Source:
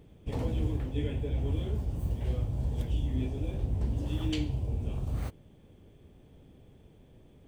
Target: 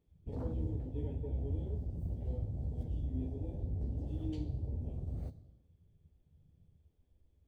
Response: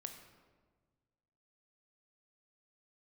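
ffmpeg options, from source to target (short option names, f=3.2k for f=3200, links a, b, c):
-filter_complex "[0:a]afwtdn=0.0112,asplit=2[a][b];[b]highshelf=f=3.3k:t=q:w=3:g=8[c];[1:a]atrim=start_sample=2205,afade=t=out:st=0.43:d=0.01,atrim=end_sample=19404,adelay=12[d];[c][d]afir=irnorm=-1:irlink=0,volume=-5dB[e];[a][e]amix=inputs=2:normalize=0,volume=-7dB"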